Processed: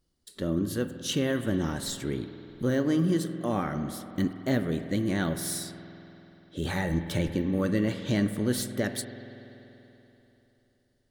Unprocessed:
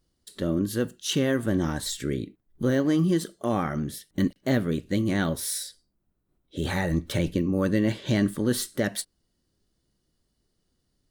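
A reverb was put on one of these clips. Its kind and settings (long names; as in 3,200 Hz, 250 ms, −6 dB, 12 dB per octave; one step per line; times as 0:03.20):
spring reverb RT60 3.4 s, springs 48 ms, chirp 60 ms, DRR 9 dB
level −3 dB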